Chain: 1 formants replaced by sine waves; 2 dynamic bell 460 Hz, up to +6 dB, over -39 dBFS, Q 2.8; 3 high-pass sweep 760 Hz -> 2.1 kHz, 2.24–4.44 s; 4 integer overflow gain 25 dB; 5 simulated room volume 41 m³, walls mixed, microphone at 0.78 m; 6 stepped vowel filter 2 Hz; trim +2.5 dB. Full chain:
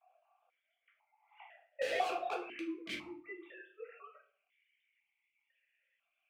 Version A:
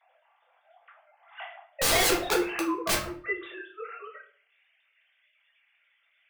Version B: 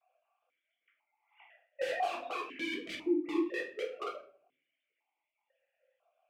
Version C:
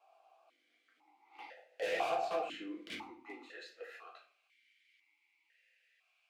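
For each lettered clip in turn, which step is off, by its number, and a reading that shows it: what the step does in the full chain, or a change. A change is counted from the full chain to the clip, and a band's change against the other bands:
6, 8 kHz band +15.0 dB; 3, 250 Hz band +8.0 dB; 1, 250 Hz band -2.5 dB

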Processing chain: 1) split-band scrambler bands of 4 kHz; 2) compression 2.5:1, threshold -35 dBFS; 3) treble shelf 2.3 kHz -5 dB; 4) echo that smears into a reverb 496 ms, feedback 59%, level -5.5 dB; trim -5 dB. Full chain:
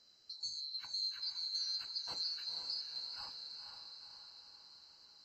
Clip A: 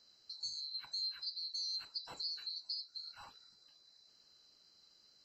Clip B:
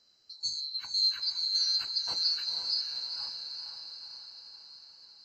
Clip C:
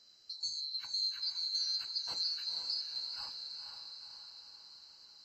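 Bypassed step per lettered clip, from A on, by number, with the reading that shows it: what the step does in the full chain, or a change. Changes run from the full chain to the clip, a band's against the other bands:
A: 4, echo-to-direct -3.5 dB to none; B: 2, mean gain reduction 6.5 dB; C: 3, 1 kHz band -3.0 dB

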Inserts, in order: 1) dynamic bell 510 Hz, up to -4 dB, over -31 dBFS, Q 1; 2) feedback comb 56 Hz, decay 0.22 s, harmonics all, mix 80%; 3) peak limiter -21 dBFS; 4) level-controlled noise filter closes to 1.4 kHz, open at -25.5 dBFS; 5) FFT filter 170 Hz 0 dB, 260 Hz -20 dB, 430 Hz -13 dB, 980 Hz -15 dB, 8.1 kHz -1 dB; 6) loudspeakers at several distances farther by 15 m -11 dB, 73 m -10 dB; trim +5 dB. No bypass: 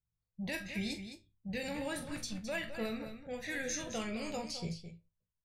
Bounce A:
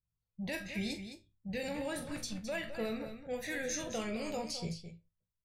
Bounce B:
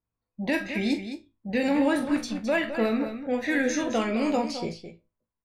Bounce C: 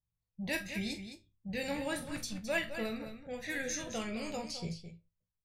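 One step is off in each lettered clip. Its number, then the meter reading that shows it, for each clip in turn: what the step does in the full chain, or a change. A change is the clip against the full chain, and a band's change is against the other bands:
1, 500 Hz band +2.0 dB; 5, 8 kHz band -9.5 dB; 3, crest factor change +2.5 dB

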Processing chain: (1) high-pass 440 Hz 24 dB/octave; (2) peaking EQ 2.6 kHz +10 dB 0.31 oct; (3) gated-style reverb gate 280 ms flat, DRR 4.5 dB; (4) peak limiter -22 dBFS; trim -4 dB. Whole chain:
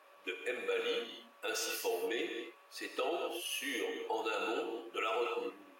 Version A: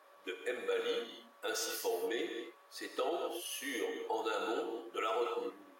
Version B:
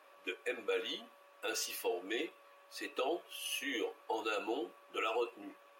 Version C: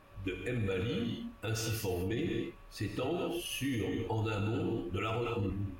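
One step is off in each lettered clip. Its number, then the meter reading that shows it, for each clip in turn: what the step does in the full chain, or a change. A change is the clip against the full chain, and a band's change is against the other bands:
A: 2, 2 kHz band -3.0 dB; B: 3, crest factor change +1.5 dB; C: 1, 250 Hz band +11.5 dB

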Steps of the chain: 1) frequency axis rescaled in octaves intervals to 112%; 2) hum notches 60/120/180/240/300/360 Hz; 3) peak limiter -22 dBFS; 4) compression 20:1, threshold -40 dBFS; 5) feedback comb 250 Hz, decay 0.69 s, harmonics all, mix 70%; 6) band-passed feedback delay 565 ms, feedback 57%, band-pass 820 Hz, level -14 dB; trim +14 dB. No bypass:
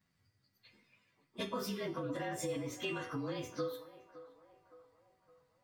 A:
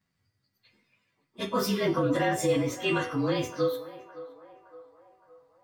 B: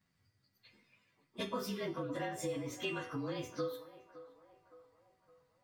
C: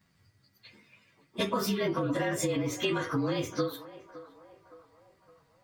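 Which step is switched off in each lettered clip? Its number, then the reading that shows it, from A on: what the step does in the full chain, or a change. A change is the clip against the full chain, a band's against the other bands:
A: 4, mean gain reduction 10.5 dB; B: 3, crest factor change +1.5 dB; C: 5, loudness change +9.0 LU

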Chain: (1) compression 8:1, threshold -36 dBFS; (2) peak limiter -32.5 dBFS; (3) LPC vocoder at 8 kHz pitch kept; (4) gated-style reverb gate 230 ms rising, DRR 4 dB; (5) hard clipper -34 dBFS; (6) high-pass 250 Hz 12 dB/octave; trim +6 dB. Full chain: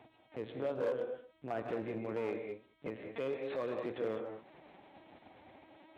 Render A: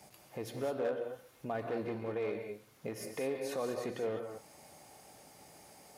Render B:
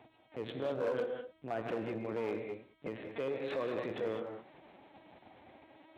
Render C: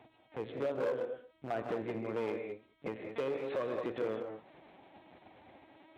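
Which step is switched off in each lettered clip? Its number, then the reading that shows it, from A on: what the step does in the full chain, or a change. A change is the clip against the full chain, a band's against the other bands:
3, 4 kHz band +3.5 dB; 1, 4 kHz band +3.0 dB; 2, momentary loudness spread change -12 LU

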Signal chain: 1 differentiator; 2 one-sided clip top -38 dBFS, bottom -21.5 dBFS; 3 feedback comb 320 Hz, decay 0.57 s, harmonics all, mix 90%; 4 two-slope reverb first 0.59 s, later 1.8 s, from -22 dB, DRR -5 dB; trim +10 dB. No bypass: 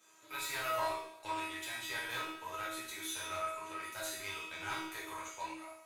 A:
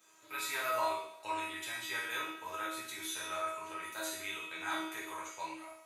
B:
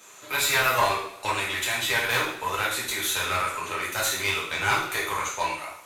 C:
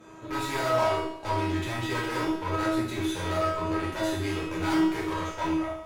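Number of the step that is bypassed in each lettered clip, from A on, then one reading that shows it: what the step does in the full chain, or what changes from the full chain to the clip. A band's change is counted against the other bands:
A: 2, distortion -10 dB; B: 3, 250 Hz band -6.0 dB; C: 1, 125 Hz band +16.5 dB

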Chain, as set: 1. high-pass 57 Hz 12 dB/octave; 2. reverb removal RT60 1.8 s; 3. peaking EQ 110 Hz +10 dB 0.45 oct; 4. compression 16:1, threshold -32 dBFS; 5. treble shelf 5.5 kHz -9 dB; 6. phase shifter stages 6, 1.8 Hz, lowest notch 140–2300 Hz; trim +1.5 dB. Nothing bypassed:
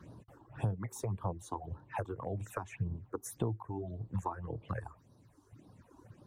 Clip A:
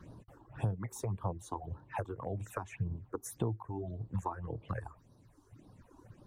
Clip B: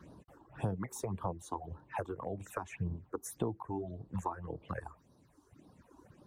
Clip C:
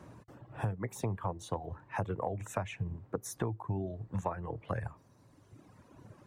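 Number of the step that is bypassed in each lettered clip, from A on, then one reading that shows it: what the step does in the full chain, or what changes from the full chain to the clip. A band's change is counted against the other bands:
1, momentary loudness spread change +1 LU; 3, 125 Hz band -4.5 dB; 6, 4 kHz band +4.5 dB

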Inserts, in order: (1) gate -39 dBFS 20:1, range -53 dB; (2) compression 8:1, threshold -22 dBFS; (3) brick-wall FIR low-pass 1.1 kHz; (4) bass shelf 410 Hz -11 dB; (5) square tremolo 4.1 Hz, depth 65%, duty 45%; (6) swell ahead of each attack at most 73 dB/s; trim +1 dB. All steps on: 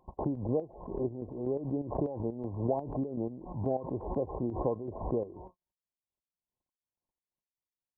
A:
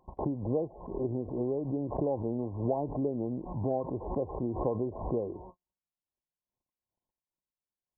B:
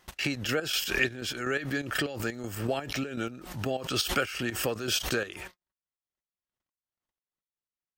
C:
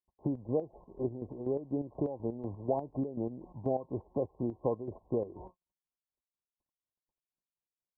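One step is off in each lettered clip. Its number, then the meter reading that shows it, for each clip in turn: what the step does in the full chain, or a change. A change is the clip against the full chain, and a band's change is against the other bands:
5, momentary loudness spread change -1 LU; 3, 1 kHz band +3.0 dB; 6, 125 Hz band -2.0 dB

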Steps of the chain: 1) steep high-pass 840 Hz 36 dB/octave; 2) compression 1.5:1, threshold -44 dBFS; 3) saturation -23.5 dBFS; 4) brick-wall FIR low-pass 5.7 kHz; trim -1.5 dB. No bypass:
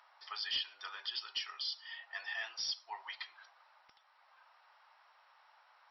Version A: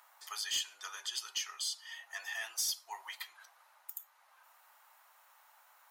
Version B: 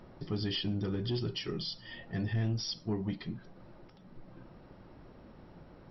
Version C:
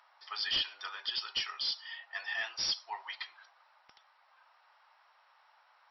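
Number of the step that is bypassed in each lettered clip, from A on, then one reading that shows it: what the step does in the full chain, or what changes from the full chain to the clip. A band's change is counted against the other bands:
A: 4, crest factor change -2.5 dB; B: 1, 500 Hz band +25.0 dB; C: 2, mean gain reduction 5.0 dB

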